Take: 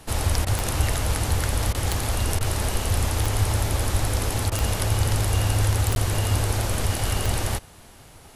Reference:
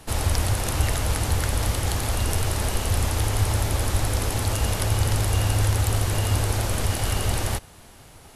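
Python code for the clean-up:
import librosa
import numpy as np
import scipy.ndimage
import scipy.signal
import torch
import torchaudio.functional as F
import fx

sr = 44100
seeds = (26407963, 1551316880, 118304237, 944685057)

y = fx.fix_declick_ar(x, sr, threshold=10.0)
y = fx.fix_interpolate(y, sr, at_s=(5.95,), length_ms=11.0)
y = fx.fix_interpolate(y, sr, at_s=(0.45, 1.73, 2.39, 4.5), length_ms=16.0)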